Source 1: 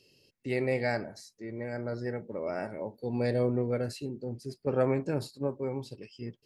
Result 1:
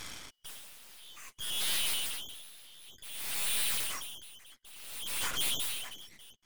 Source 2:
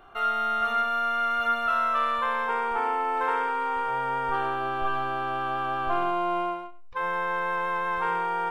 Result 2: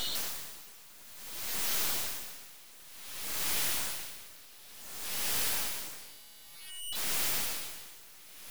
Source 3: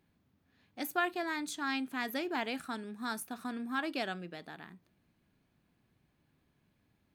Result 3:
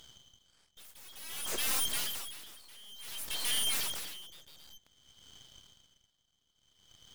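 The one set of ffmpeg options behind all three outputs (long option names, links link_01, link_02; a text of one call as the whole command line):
ffmpeg -i in.wav -af "afftfilt=real='real(if(lt(b,272),68*(eq(floor(b/68),0)*2+eq(floor(b/68),1)*3+eq(floor(b/68),2)*0+eq(floor(b/68),3)*1)+mod(b,68),b),0)':imag='imag(if(lt(b,272),68*(eq(floor(b/68),0)*2+eq(floor(b/68),1)*3+eq(floor(b/68),2)*0+eq(floor(b/68),3)*1)+mod(b,68),b),0)':win_size=2048:overlap=0.75,highpass=180,alimiter=limit=-22.5dB:level=0:latency=1:release=15,aeval=exprs='0.075*sin(PI/2*8.91*val(0)/0.075)':channel_layout=same,aeval=exprs='0.0794*(cos(1*acos(clip(val(0)/0.0794,-1,1)))-cos(1*PI/2))+0.00251*(cos(4*acos(clip(val(0)/0.0794,-1,1)))-cos(4*PI/2))+0.00316*(cos(6*acos(clip(val(0)/0.0794,-1,1)))-cos(6*PI/2))+0.001*(cos(7*acos(clip(val(0)/0.0794,-1,1)))-cos(7*PI/2))+0.0316*(cos(8*acos(clip(val(0)/0.0794,-1,1)))-cos(8*PI/2))':channel_layout=same,aeval=exprs='val(0)*pow(10,-23*(0.5-0.5*cos(2*PI*0.55*n/s))/20)':channel_layout=same,volume=-6.5dB" out.wav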